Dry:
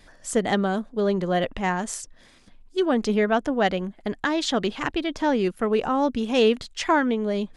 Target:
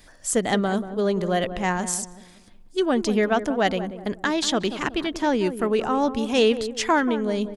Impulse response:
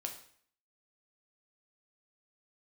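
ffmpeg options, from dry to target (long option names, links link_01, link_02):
-filter_complex "[0:a]highshelf=frequency=7200:gain=11.5,asplit=2[link_01][link_02];[link_02]adelay=185,lowpass=frequency=820:poles=1,volume=-10dB,asplit=2[link_03][link_04];[link_04]adelay=185,lowpass=frequency=820:poles=1,volume=0.43,asplit=2[link_05][link_06];[link_06]adelay=185,lowpass=frequency=820:poles=1,volume=0.43,asplit=2[link_07][link_08];[link_08]adelay=185,lowpass=frequency=820:poles=1,volume=0.43,asplit=2[link_09][link_10];[link_10]adelay=185,lowpass=frequency=820:poles=1,volume=0.43[link_11];[link_01][link_03][link_05][link_07][link_09][link_11]amix=inputs=6:normalize=0"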